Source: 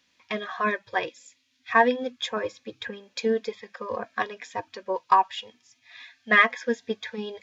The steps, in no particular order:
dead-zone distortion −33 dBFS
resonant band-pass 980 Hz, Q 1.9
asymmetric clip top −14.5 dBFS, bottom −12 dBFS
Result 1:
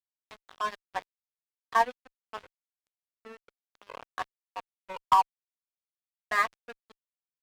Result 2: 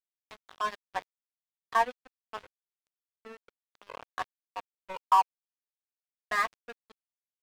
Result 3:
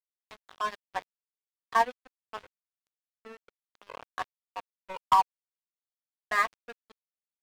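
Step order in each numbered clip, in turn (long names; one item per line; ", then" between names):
resonant band-pass, then dead-zone distortion, then asymmetric clip
asymmetric clip, then resonant band-pass, then dead-zone distortion
resonant band-pass, then asymmetric clip, then dead-zone distortion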